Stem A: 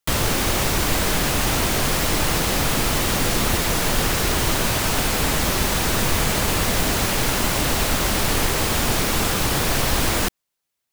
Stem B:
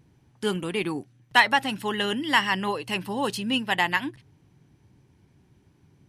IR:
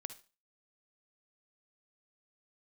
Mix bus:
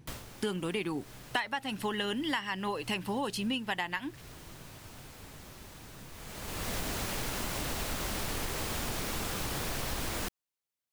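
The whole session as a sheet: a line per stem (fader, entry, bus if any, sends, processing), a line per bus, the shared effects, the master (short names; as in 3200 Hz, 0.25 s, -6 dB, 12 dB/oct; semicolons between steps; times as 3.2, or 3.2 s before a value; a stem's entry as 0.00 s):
-12.5 dB, 0.00 s, no send, auto duck -17 dB, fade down 0.25 s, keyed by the second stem
+3.0 dB, 0.00 s, no send, dry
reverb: off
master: compressor 8:1, threshold -30 dBFS, peak gain reduction 20 dB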